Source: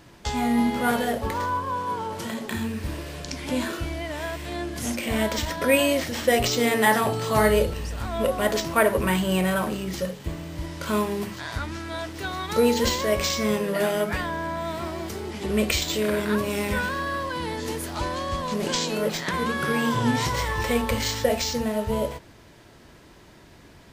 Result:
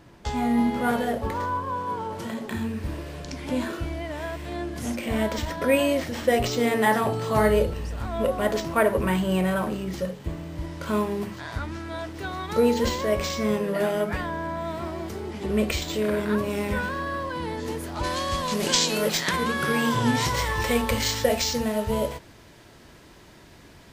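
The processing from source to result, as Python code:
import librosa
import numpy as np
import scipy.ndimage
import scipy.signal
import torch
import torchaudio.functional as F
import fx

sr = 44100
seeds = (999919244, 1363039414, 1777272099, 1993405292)

y = fx.high_shelf(x, sr, hz=2000.0, db=fx.steps((0.0, -7.0), (18.03, 7.0), (19.35, 2.0)))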